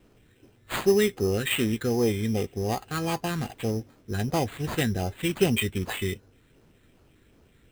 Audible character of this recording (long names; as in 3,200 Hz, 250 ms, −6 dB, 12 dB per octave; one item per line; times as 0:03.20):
phaser sweep stages 4, 2.6 Hz, lowest notch 780–1,800 Hz
aliases and images of a low sample rate 5,600 Hz, jitter 0%